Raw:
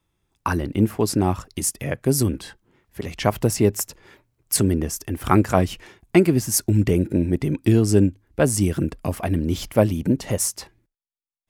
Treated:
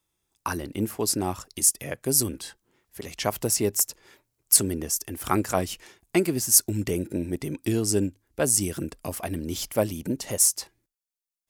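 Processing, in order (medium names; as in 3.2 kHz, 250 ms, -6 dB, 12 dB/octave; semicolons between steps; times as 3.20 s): tone controls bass -6 dB, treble +10 dB; trim -5.5 dB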